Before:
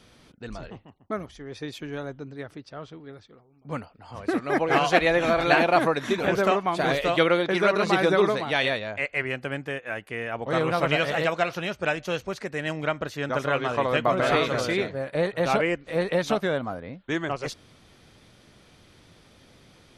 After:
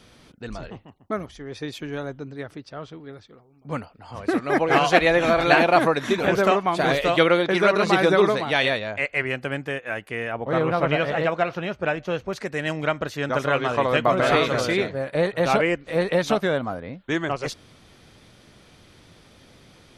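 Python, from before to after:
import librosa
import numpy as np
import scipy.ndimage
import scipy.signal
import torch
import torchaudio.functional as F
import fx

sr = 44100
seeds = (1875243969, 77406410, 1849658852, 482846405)

y = fx.lowpass(x, sr, hz=1700.0, slope=6, at=(10.32, 12.33))
y = F.gain(torch.from_numpy(y), 3.0).numpy()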